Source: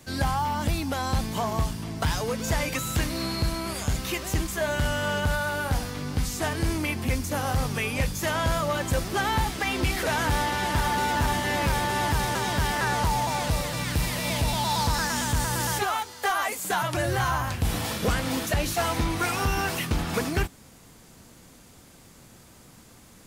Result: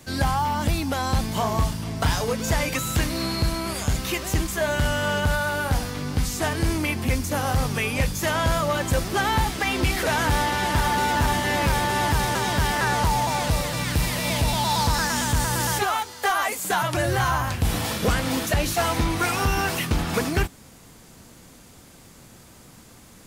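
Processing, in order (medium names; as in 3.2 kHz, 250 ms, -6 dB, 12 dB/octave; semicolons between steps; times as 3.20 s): 1.25–2.33 s: doubling 35 ms -8 dB; trim +3 dB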